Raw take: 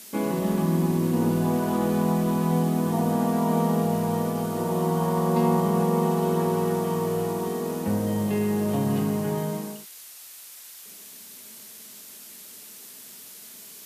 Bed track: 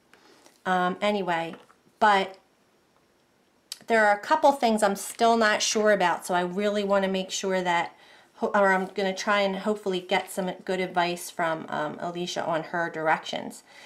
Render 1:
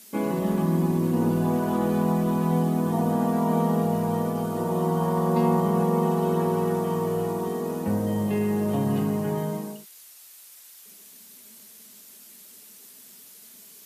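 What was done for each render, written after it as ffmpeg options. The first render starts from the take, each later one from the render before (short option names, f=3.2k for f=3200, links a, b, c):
-af "afftdn=nr=6:nf=-45"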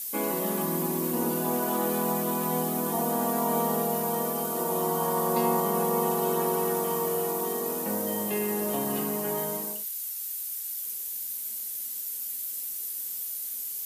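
-af "highpass=200,aemphasis=mode=production:type=bsi"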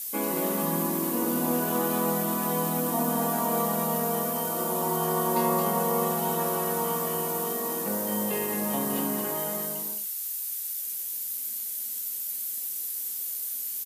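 -filter_complex "[0:a]asplit=2[a][b];[b]adelay=25,volume=-11.5dB[c];[a][c]amix=inputs=2:normalize=0,aecho=1:1:220:0.562"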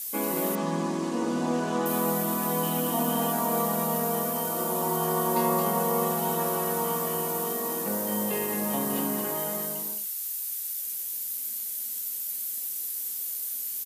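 -filter_complex "[0:a]asettb=1/sr,asplit=3[a][b][c];[a]atrim=end=0.554[d];[b]atrim=start=0.55:end=1.86,asetpts=PTS-STARTPTS,afade=t=in:d=0.004:c=qsin,afade=t=out:st=1.306:d=0.004:c=qsin,lowpass=f=6.9k:w=0.5412,lowpass=f=6.9k:w=1.3066[e];[c]atrim=start=1.856[f];[d][e]acrossfade=d=0.004:c1=hsin:c2=qsin[g];[g][f]acrossfade=d=0.004:c1=qsin:c2=hsin,asettb=1/sr,asplit=3[h][i][j];[h]atrim=end=2.634[k];[i]atrim=start=2.63:end=3.32,asetpts=PTS-STARTPTS,afade=t=in:d=0.004:c=qsin,afade=t=out:st=0.686:d=0.004:c=qsin,equalizer=f=3k:t=o:w=0.24:g=11[l];[j]atrim=start=3.316[m];[k][l]acrossfade=d=0.004:c1=hsin:c2=qsin[n];[n][m]acrossfade=d=0.004:c1=qsin:c2=hsin"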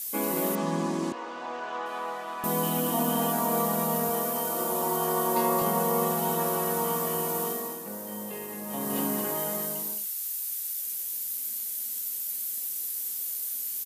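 -filter_complex "[0:a]asettb=1/sr,asplit=3[a][b][c];[a]atrim=end=1.124[d];[b]atrim=start=1.12:end=2.44,asetpts=PTS-STARTPTS,afade=t=in:d=0.004:c=qsin,afade=t=out:st=1.316:d=0.004:c=qsin,highpass=800,lowpass=3k[e];[c]atrim=start=2.436[f];[d][e]acrossfade=d=0.004:c1=hsin:c2=qsin[g];[g][f]acrossfade=d=0.004:c1=qsin:c2=hsin,asettb=1/sr,asplit=3[h][i][j];[h]atrim=end=4.094[k];[i]atrim=start=4.09:end=5.62,asetpts=PTS-STARTPTS,afade=t=in:d=0.004:c=qsin,afade=t=out:st=1.526:d=0.004:c=qsin,highpass=210[l];[j]atrim=start=5.616[m];[k][l]acrossfade=d=0.004:c1=hsin:c2=qsin[n];[n][m]acrossfade=d=0.004:c1=qsin:c2=hsin,asplit=3[o][p][q];[o]atrim=end=7.8,asetpts=PTS-STARTPTS,afade=t=out:st=7.45:d=0.35:silence=0.375837[r];[p]atrim=start=7.8:end=8.66,asetpts=PTS-STARTPTS,volume=-8.5dB[s];[q]atrim=start=8.66,asetpts=PTS-STARTPTS,afade=t=in:d=0.35:silence=0.375837[t];[r][s][t]concat=n=3:v=0:a=1"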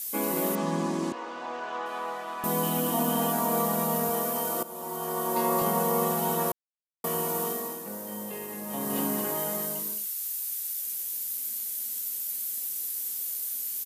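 -filter_complex "[0:a]asettb=1/sr,asplit=3[a][b][c];[a]atrim=end=9.794[d];[b]atrim=start=9.79:end=10.19,asetpts=PTS-STARTPTS,afade=t=in:d=0.004:c=qsin,afade=t=out:st=0.396:d=0.004:c=qsin,asuperstop=centerf=760:order=4:qfactor=2.4[e];[c]atrim=start=10.186[f];[d][e]acrossfade=d=0.004:c1=hsin:c2=qsin[g];[g][f]acrossfade=d=0.004:c1=qsin:c2=hsin,asplit=4[h][i][j][k];[h]atrim=end=4.63,asetpts=PTS-STARTPTS,afade=t=out:st=4.626:d=0.004:c=hsin:silence=0.188365[l];[i]atrim=start=4.63:end=6.52,asetpts=PTS-STARTPTS,afade=t=in:d=0.95:silence=0.188365,afade=t=out:st=1.886:d=0.004:c=hsin[m];[j]atrim=start=6.52:end=7.04,asetpts=PTS-STARTPTS,volume=0[n];[k]atrim=start=7.04,asetpts=PTS-STARTPTS,afade=t=in:d=0.004:c=hsin[o];[l][m][n][o]concat=n=4:v=0:a=1"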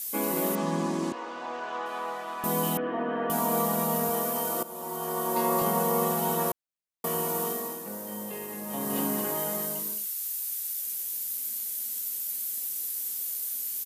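-filter_complex "[0:a]asettb=1/sr,asplit=3[a][b][c];[a]atrim=end=2.774[d];[b]atrim=start=2.77:end=3.3,asetpts=PTS-STARTPTS,afade=t=in:d=0.004:c=qsin,afade=t=out:st=0.526:d=0.004:c=qsin,highpass=f=230:w=0.5412,highpass=f=230:w=1.3066,equalizer=f=230:t=q:w=4:g=-4,equalizer=f=410:t=q:w=4:g=4,equalizer=f=850:t=q:w=4:g=-9,equalizer=f=1.7k:t=q:w=4:g=7,lowpass=f=2.2k:w=0.5412,lowpass=f=2.2k:w=1.3066[e];[c]atrim=start=3.296[f];[d][e]acrossfade=d=0.004:c1=hsin:c2=qsin[g];[g][f]acrossfade=d=0.004:c1=qsin:c2=hsin"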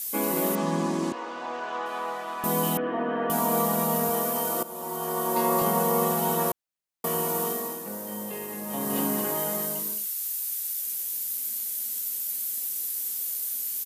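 -af "volume=2dB"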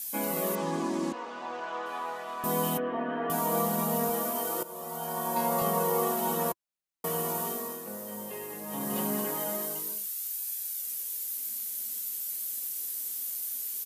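-af "flanger=delay=1.2:depth=6.8:regen=-35:speed=0.19:shape=sinusoidal"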